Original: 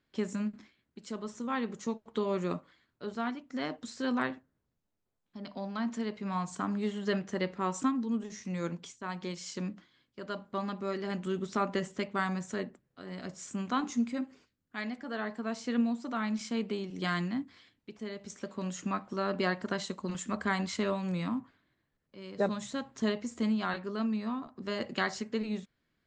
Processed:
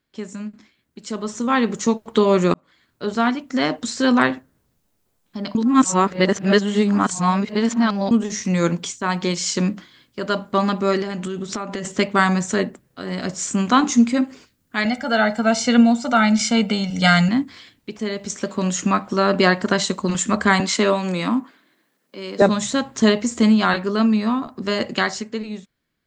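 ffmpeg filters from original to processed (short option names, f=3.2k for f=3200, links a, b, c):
-filter_complex "[0:a]asettb=1/sr,asplit=3[a][b][c];[a]atrim=end=11.024[d];[b]atrim=start=11.02:end=11.85,asetpts=PTS-STARTPTS,afade=t=in:d=0.004:c=qsin,afade=t=out:st=0.826:d=0.004:c=qsin,acompressor=threshold=-39dB:ratio=6:attack=3.2:release=140:knee=1:detection=peak[e];[c]atrim=start=11.846[f];[d][e]acrossfade=d=0.004:c1=hsin:c2=qsin[g];[g][f]acrossfade=d=0.004:c1=qsin:c2=hsin,asettb=1/sr,asplit=3[h][i][j];[h]atrim=end=14.854[k];[i]atrim=start=14.85:end=17.29,asetpts=PTS-STARTPTS,afade=t=in:d=0.004:c=qsin,afade=t=out:st=2.436:d=0.004:c=qsin,aecho=1:1:1.4:0.93,atrim=end_sample=107604[l];[j]atrim=start=17.286[m];[k][l]acrossfade=d=0.004:c1=hsin:c2=qsin[n];[n][m]acrossfade=d=0.004:c1=qsin:c2=hsin,asettb=1/sr,asplit=3[o][p][q];[o]atrim=end=20.604[r];[p]atrim=start=20.6:end=22.42,asetpts=PTS-STARTPTS,afade=t=in:d=0.004:c=qsin,afade=t=out:st=1.816:d=0.004:c=qsin,highpass=f=210:w=0.5412,highpass=f=210:w=1.3066[s];[q]atrim=start=22.416[t];[r][s]acrossfade=d=0.004:c1=hsin:c2=qsin[u];[u][t]acrossfade=d=0.004:c1=qsin:c2=hsin,asplit=4[v][w][x][y];[v]atrim=end=2.54,asetpts=PTS-STARTPTS,afade=t=out:st=2.536:d=0.004:c=hsin[z];[w]atrim=start=2.54:end=5.552,asetpts=PTS-STARTPTS,afade=t=in:d=0.62[aa];[x]atrim=start=5.548:end=8.112,asetpts=PTS-STARTPTS,areverse[ab];[y]atrim=start=8.108[ac];[z][aa]concat=n=2:v=0:a=1[ad];[ad][ab]acrossfade=d=0.004:c1=hsin:c2=hsin[ae];[ae][ac]acrossfade=d=0.004:c1=hsin:c2=hsin,highshelf=f=6.1k:g=7.5,dynaudnorm=f=110:g=21:m=14.5dB,volume=1.5dB"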